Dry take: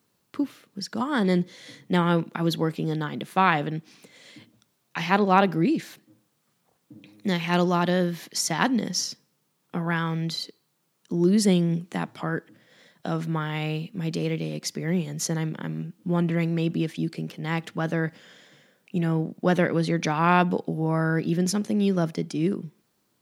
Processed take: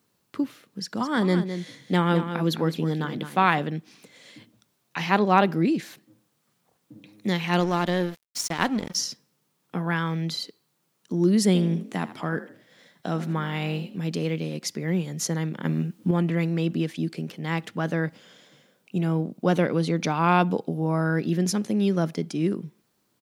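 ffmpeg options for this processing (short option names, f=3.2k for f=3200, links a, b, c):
-filter_complex "[0:a]asplit=3[a][b][c];[a]afade=t=out:st=0.98:d=0.02[d];[b]aecho=1:1:210:0.335,afade=t=in:st=0.98:d=0.02,afade=t=out:st=3.58:d=0.02[e];[c]afade=t=in:st=3.58:d=0.02[f];[d][e][f]amix=inputs=3:normalize=0,asettb=1/sr,asplit=3[g][h][i];[g]atrim=end=7.604[j];[h]atrim=start=7.6:end=8.95,asetpts=PTS-STARTPTS,afade=t=in:d=0.004:c=qsin,afade=t=out:st=1.346:d=0.004:c=qsin,aeval=exprs='sgn(val(0))*max(abs(val(0))-0.0224,0)':c=same[k];[i]atrim=start=8.946[l];[j][k]acrossfade=d=0.004:c1=hsin:c2=qsin[m];[m][l]acrossfade=d=0.004:c1=qsin:c2=hsin,asettb=1/sr,asplit=3[n][o][p];[n]atrim=end=11.464[q];[o]atrim=start=11.46:end=13.98,asetpts=PTS-STARTPTS,afade=t=in:d=0.004:c=qsin,afade=t=out:st=2.516:d=0.004:c=qsin,asplit=4[r][s][t][u];[s]adelay=80,afreqshift=47,volume=-14dB[v];[t]adelay=160,afreqshift=94,volume=-24.2dB[w];[u]adelay=240,afreqshift=141,volume=-34.3dB[x];[r][v][w][x]amix=inputs=4:normalize=0,atrim=end_sample=111132[y];[p]atrim=start=13.976[z];[q][y]acrossfade=d=0.004:c1=hsin:c2=qsin[aa];[aa][z]acrossfade=d=0.004:c1=qsin:c2=hsin,asettb=1/sr,asplit=3[ab][ac][ad];[ab]atrim=end=15.654[ae];[ac]atrim=start=15.65:end=16.11,asetpts=PTS-STARTPTS,afade=t=in:d=0.004:c=qsin,afade=t=out:st=0.456:d=0.004:c=qsin,acontrast=57[af];[ad]atrim=start=16.106[ag];[ae][af]acrossfade=d=0.004:c1=hsin:c2=qsin[ah];[ah][ag]acrossfade=d=0.004:c1=qsin:c2=hsin,asettb=1/sr,asplit=3[ai][aj][ak];[ai]atrim=end=18.054[al];[aj]atrim=start=18.05:end=21.06,asetpts=PTS-STARTPTS,afade=t=in:d=0.004:c=qsin,afade=t=out:st=3.006:d=0.004:c=qsin,equalizer=f=1.8k:w=4.8:g=-7.5[am];[ak]atrim=start=21.056[an];[al][am]acrossfade=d=0.004:c1=hsin:c2=qsin[ao];[ao][an]acrossfade=d=0.004:c1=qsin:c2=hsin"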